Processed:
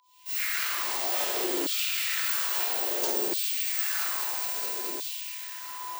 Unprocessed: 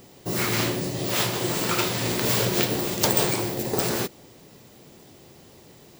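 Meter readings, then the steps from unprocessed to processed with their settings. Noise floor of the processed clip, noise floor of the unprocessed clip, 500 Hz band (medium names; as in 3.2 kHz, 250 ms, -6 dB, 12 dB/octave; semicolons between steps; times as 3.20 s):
-39 dBFS, -51 dBFS, -9.0 dB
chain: fade-in on the opening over 0.98 s; peaking EQ 530 Hz -2.5 dB 0.31 oct; feedback echo behind a high-pass 211 ms, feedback 66%, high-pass 1.6 kHz, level -9 dB; gated-style reverb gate 430 ms falling, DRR -6 dB; whistle 1 kHz -44 dBFS; high-pass 170 Hz 24 dB/octave; treble shelf 11 kHz +8.5 dB; LFO high-pass saw down 0.6 Hz 310–3700 Hz; compression 6:1, threshold -28 dBFS, peak gain reduction 20.5 dB; trim +1 dB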